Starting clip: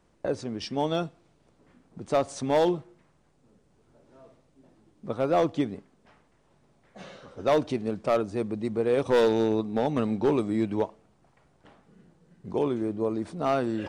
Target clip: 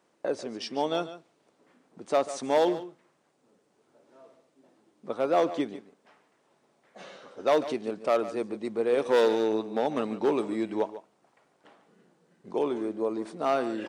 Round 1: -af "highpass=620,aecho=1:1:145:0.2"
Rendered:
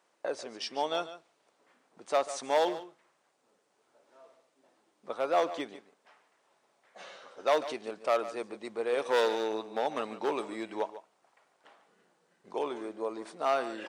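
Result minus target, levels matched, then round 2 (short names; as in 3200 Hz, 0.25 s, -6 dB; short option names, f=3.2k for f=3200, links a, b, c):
250 Hz band -5.5 dB
-af "highpass=300,aecho=1:1:145:0.2"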